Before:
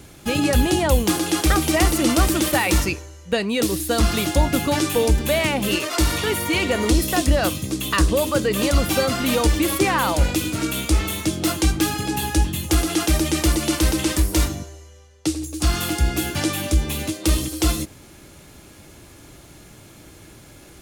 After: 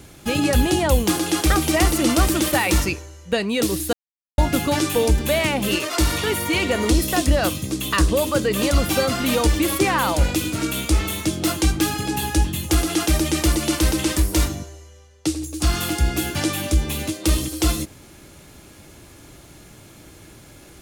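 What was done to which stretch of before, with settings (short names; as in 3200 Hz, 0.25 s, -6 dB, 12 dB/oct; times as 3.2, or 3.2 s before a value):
3.93–4.38 mute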